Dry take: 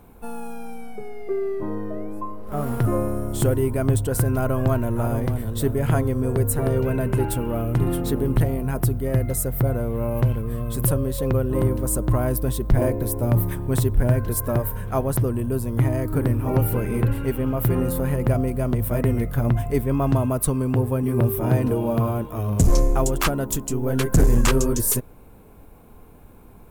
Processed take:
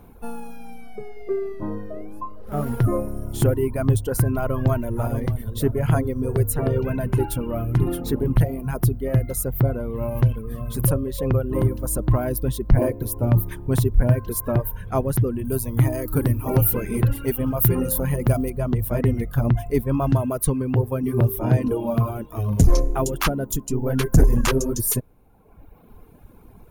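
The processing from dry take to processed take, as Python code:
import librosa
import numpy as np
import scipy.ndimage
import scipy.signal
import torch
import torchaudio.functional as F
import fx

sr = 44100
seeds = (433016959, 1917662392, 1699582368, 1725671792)

y = fx.high_shelf(x, sr, hz=4900.0, db=11.0, at=(15.45, 18.5))
y = fx.notch(y, sr, hz=7900.0, q=5.9)
y = fx.dereverb_blind(y, sr, rt60_s=1.2)
y = fx.low_shelf(y, sr, hz=370.0, db=3.0)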